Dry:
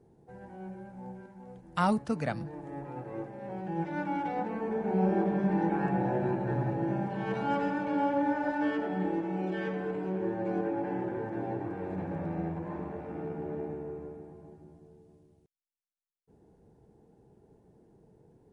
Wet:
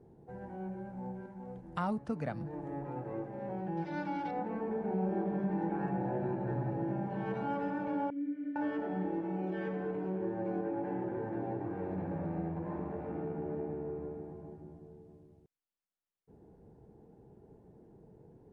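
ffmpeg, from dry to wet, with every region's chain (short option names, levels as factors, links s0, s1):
-filter_complex "[0:a]asettb=1/sr,asplit=3[s0][s1][s2];[s0]atrim=end=3.774[s3];[s1]atrim=start=3.77:end=4.31,asetpts=PTS-STARTPTS,afade=t=in:d=0.004:c=qsin,afade=t=out:st=0.536:d=0.004:c=qsin,lowpass=f=4700:t=q:w=3.2,aemphasis=mode=production:type=75fm[s4];[s2]atrim=start=4.306[s5];[s3][s4]acrossfade=d=0.004:c1=hsin:c2=qsin[s6];[s6][s5]acrossfade=d=0.004:c1=qsin:c2=hsin,asettb=1/sr,asplit=3[s7][s8][s9];[s7]atrim=end=8.104[s10];[s8]atrim=start=8.1:end=8.56,asetpts=PTS-STARTPTS,afade=t=in:d=0.004:c=qsin,afade=t=out:st=0.456:d=0.004:c=qsin,asplit=3[s11][s12][s13];[s11]bandpass=f=270:t=q:w=8,volume=1[s14];[s12]bandpass=f=2290:t=q:w=8,volume=0.501[s15];[s13]bandpass=f=3010:t=q:w=8,volume=0.355[s16];[s14][s15][s16]amix=inputs=3:normalize=0,highshelf=f=4100:g=-10.5[s17];[s9]atrim=start=8.556[s18];[s10][s17]acrossfade=d=0.004:c1=hsin:c2=qsin[s19];[s19][s18]acrossfade=d=0.004:c1=qsin:c2=hsin,acompressor=threshold=0.01:ratio=2,highshelf=f=2500:g=-11.5,volume=1.41"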